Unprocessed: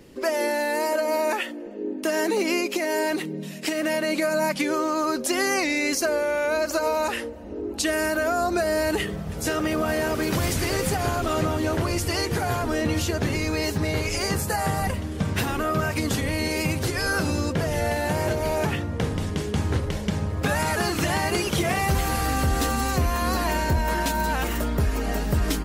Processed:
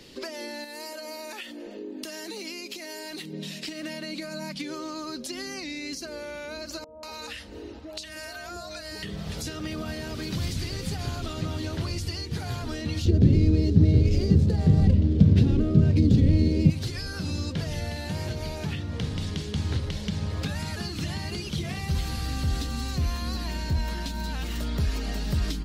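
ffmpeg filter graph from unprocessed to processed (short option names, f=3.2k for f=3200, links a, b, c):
-filter_complex "[0:a]asettb=1/sr,asplit=3[a][b][c];[a]atrim=end=0.644[d];[b]atrim=start=0.64:end=3.33,asetpts=PTS-STARTPTS,afade=t=in:d=0.004:c=qsin,afade=t=out:st=2.686:d=0.004:c=qsin,highshelf=f=8.5k:g=9.5,acompressor=threshold=-31dB:ratio=2.5:attack=3.2:release=140:knee=1:detection=peak[e];[c]atrim=start=3.326[f];[d][e]acrossfade=d=0.004:c1=hsin:c2=qsin[g];[g][f]acrossfade=d=0.004:c1=qsin:c2=hsin,asettb=1/sr,asplit=3[h][i][j];[h]atrim=end=6.844[k];[i]atrim=start=6.84:end=9.03,asetpts=PTS-STARTPTS,afade=t=in:d=0.004:c=qsin,afade=t=out:st=2.186:d=0.004:c=qsin,equalizer=f=380:w=4.3:g=-9.5,acompressor=threshold=-30dB:ratio=5:attack=3.2:release=140:knee=1:detection=peak,acrossover=split=210|720[l][m][n];[l]adelay=40[o];[n]adelay=190[p];[o][m][p]amix=inputs=3:normalize=0,atrim=end_sample=96579[q];[j]atrim=start=9.026[r];[k][q]acrossfade=d=0.004:c1=hsin:c2=qsin[s];[s][r]acrossfade=d=0.004:c1=qsin:c2=hsin,asettb=1/sr,asplit=3[t][u][v];[t]atrim=end=13.054[w];[u]atrim=start=13.05:end=16.7,asetpts=PTS-STARTPTS,afade=t=in:d=0.004:c=qsin,afade=t=out:st=3.646:d=0.004:c=qsin,lowshelf=f=680:t=q:w=1.5:g=12.5,adynamicsmooth=sensitivity=6.5:basefreq=1.5k[x];[v]atrim=start=16.696[y];[w][x]acrossfade=d=0.004:c1=hsin:c2=qsin[z];[z][y]acrossfade=d=0.004:c1=qsin:c2=hsin,equalizer=f=4.1k:w=0.91:g=15,acrossover=split=250[aa][ab];[ab]acompressor=threshold=-33dB:ratio=10[ac];[aa][ac]amix=inputs=2:normalize=0,volume=-2.5dB"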